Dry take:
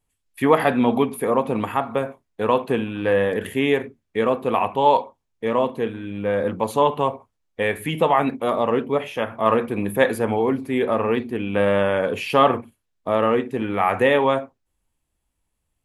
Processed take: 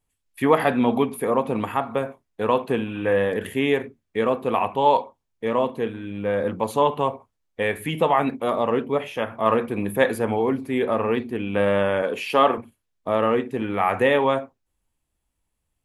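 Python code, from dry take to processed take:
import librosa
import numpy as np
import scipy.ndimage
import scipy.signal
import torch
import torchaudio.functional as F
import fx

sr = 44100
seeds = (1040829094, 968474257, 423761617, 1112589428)

y = fx.spec_repair(x, sr, seeds[0], start_s=2.91, length_s=0.23, low_hz=2400.0, high_hz=6100.0, source='before')
y = fx.highpass(y, sr, hz=230.0, slope=12, at=(12.02, 12.58))
y = y * 10.0 ** (-1.5 / 20.0)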